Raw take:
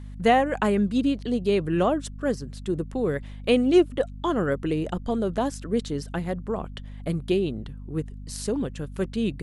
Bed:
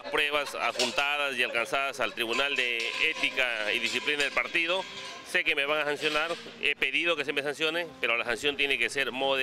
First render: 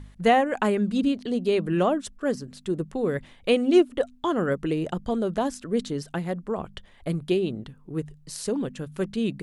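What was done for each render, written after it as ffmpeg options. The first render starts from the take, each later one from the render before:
-af "bandreject=f=50:t=h:w=4,bandreject=f=100:t=h:w=4,bandreject=f=150:t=h:w=4,bandreject=f=200:t=h:w=4,bandreject=f=250:t=h:w=4"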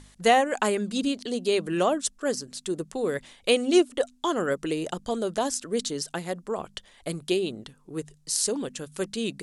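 -af "lowpass=9700,bass=f=250:g=-9,treble=f=4000:g=14"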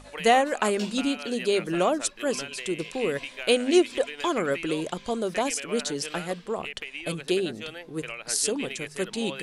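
-filter_complex "[1:a]volume=0.299[s0];[0:a][s0]amix=inputs=2:normalize=0"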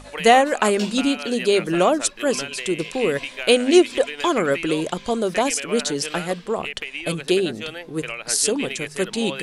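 -af "volume=2,alimiter=limit=0.708:level=0:latency=1"

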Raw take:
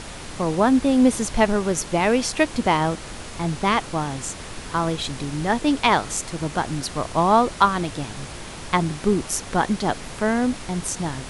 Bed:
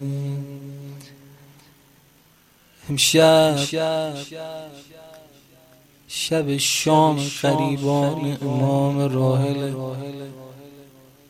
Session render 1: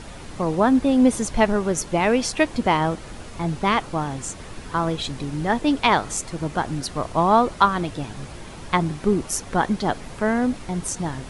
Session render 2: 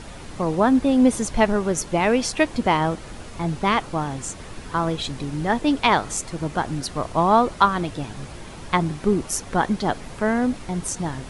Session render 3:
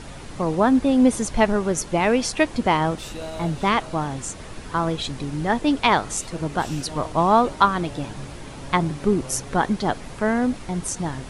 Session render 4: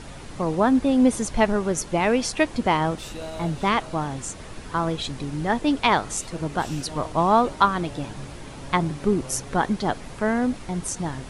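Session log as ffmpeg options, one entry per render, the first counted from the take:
-af "afftdn=nr=7:nf=-37"
-af anull
-filter_complex "[1:a]volume=0.0891[s0];[0:a][s0]amix=inputs=2:normalize=0"
-af "volume=0.841"

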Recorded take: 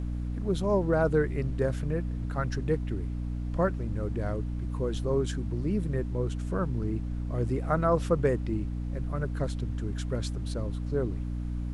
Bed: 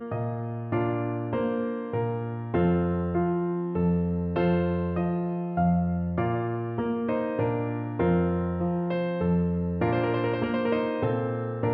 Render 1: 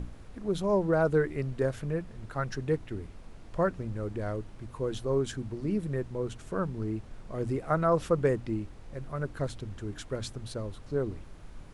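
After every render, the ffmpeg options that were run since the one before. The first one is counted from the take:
-af "bandreject=f=60:t=h:w=6,bandreject=f=120:t=h:w=6,bandreject=f=180:t=h:w=6,bandreject=f=240:t=h:w=6,bandreject=f=300:t=h:w=6"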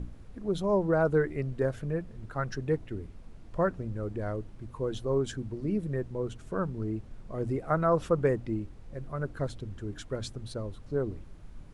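-af "afftdn=nr=6:nf=-48"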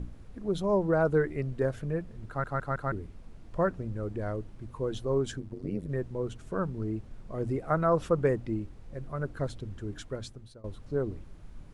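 -filter_complex "[0:a]asplit=3[s0][s1][s2];[s0]afade=t=out:st=5.38:d=0.02[s3];[s1]tremolo=f=94:d=0.919,afade=t=in:st=5.38:d=0.02,afade=t=out:st=5.88:d=0.02[s4];[s2]afade=t=in:st=5.88:d=0.02[s5];[s3][s4][s5]amix=inputs=3:normalize=0,asplit=6[s6][s7][s8][s9][s10][s11];[s6]atrim=end=2.442[s12];[s7]atrim=start=2.278:end=2.442[s13];[s8]atrim=start=2.278:end=2.442[s14];[s9]atrim=start=2.278:end=2.442[s15];[s10]atrim=start=2.918:end=10.64,asetpts=PTS-STARTPTS,afade=t=out:st=7.062:d=0.66:silence=0.0841395[s16];[s11]atrim=start=10.64,asetpts=PTS-STARTPTS,afade=t=in:d=0.004:c=hsin:silence=0.0841395[s17];[s12][s13]acrossfade=d=0.004:c1=hsin:c2=hsin[s18];[s18][s14]acrossfade=d=0.004:c1=hsin:c2=hsin[s19];[s19][s15]acrossfade=d=0.004:c1=hsin:c2=hsin[s20];[s16][s17]concat=n=2:v=0:a=1[s21];[s20][s21]acrossfade=d=0.004:c1=hsin:c2=hsin"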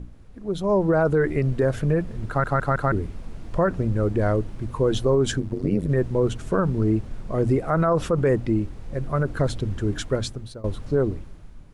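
-af "dynaudnorm=f=150:g=11:m=4.47,alimiter=limit=0.251:level=0:latency=1:release=46"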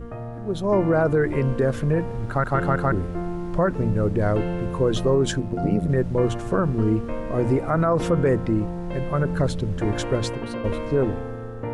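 -filter_complex "[1:a]volume=0.631[s0];[0:a][s0]amix=inputs=2:normalize=0"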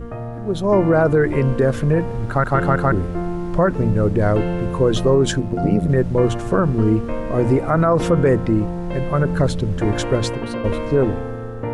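-af "volume=1.68"

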